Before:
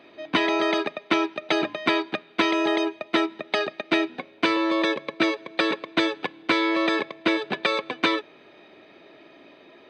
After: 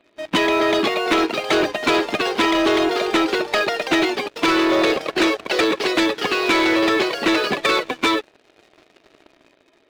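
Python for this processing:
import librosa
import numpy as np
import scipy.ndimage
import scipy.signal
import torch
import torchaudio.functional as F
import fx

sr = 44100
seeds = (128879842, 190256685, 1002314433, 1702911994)

y = fx.spec_quant(x, sr, step_db=15)
y = fx.echo_pitch(y, sr, ms=530, semitones=2, count=3, db_per_echo=-6.0)
y = fx.leveller(y, sr, passes=3)
y = F.gain(torch.from_numpy(y), -4.0).numpy()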